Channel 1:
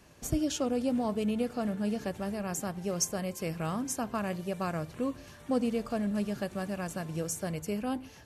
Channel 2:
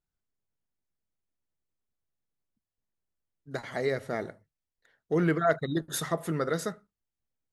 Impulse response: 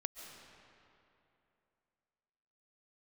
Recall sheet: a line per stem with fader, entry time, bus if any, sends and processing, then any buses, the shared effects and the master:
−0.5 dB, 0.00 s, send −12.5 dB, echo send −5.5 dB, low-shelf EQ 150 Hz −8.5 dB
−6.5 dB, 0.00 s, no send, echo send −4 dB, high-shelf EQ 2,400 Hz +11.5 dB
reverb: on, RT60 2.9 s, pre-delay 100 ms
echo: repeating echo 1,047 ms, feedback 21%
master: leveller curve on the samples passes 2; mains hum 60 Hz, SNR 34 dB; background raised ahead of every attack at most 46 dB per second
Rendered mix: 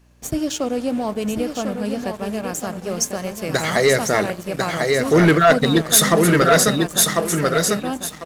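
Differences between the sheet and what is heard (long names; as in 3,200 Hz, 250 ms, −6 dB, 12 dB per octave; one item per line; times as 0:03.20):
stem 2 −6.5 dB → +5.5 dB
master: missing background raised ahead of every attack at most 46 dB per second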